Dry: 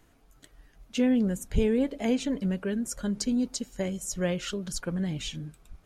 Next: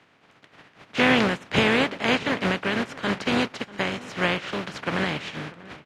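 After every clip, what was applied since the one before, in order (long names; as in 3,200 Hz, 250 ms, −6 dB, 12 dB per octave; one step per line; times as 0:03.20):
compressing power law on the bin magnitudes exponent 0.32
Chebyshev band-pass filter 130–2,400 Hz, order 2
slap from a distant wall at 110 metres, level −19 dB
level +6.5 dB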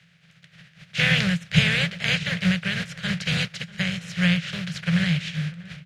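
drawn EQ curve 110 Hz 0 dB, 170 Hz +12 dB, 260 Hz −29 dB, 550 Hz −11 dB, 970 Hz −21 dB, 1,600 Hz −3 dB, 3,900 Hz +1 dB
level +3 dB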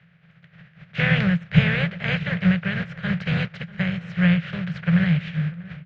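low-pass filter 1,700 Hz 12 dB per octave
level +3.5 dB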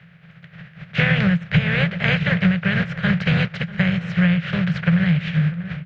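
downward compressor 6 to 1, threshold −22 dBFS, peak gain reduction 12.5 dB
level +8 dB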